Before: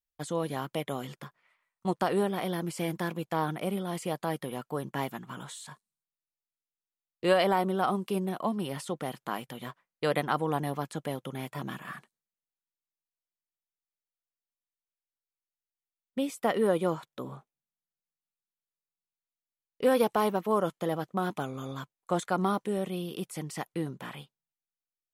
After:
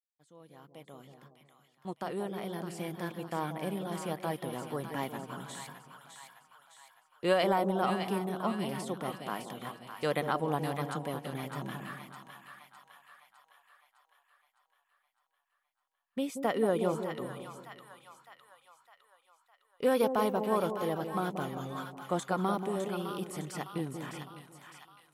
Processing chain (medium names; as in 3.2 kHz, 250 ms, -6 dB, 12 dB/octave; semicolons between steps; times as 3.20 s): fade-in on the opening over 4.38 s; two-band feedback delay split 880 Hz, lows 182 ms, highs 608 ms, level -7 dB; trim -3 dB